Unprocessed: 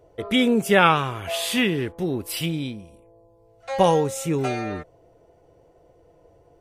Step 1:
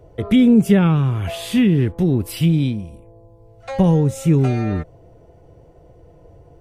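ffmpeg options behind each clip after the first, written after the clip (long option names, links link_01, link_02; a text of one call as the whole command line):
ffmpeg -i in.wav -filter_complex "[0:a]acrossover=split=360[link_01][link_02];[link_02]acompressor=threshold=-34dB:ratio=3[link_03];[link_01][link_03]amix=inputs=2:normalize=0,bass=frequency=250:gain=10,treble=frequency=4000:gain=-2,volume=4.5dB" out.wav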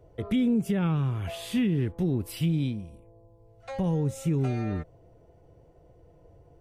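ffmpeg -i in.wav -af "alimiter=limit=-9dB:level=0:latency=1:release=159,volume=-9dB" out.wav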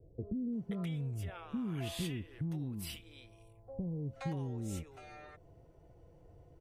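ffmpeg -i in.wav -filter_complex "[0:a]acompressor=threshold=-32dB:ratio=6,acrossover=split=530[link_01][link_02];[link_02]adelay=530[link_03];[link_01][link_03]amix=inputs=2:normalize=0,volume=-3dB" out.wav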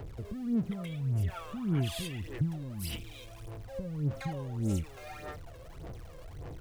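ffmpeg -i in.wav -af "aeval=exprs='val(0)+0.5*0.00376*sgn(val(0))':channel_layout=same,aphaser=in_gain=1:out_gain=1:delay=1.9:decay=0.66:speed=1.7:type=sinusoidal" out.wav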